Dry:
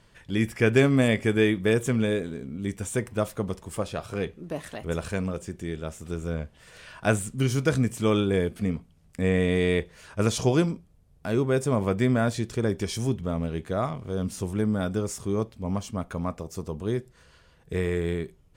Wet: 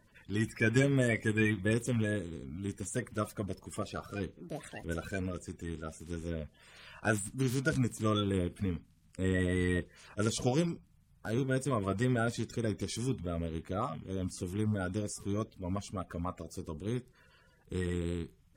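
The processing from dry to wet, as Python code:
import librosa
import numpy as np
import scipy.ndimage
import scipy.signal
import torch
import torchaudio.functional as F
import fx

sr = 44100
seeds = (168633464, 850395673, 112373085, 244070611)

y = fx.spec_quant(x, sr, step_db=30)
y = fx.peak_eq(y, sr, hz=460.0, db=-4.0, octaves=1.5)
y = F.gain(torch.from_numpy(y), -5.0).numpy()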